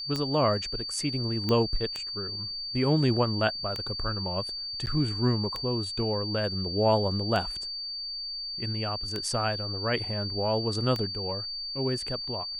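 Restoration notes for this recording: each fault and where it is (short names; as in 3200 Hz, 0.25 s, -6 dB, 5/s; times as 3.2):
tick 33 1/3 rpm -17 dBFS
tone 4600 Hz -33 dBFS
1.49 pop -15 dBFS
4.86–4.87 gap 9.3 ms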